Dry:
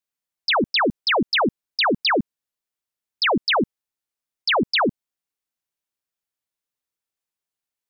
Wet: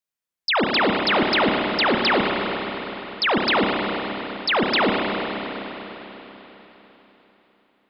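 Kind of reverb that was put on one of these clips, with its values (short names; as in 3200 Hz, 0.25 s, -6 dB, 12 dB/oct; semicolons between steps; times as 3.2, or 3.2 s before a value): spring tank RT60 4 s, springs 30/49 ms, chirp 70 ms, DRR -0.5 dB; gain -1.5 dB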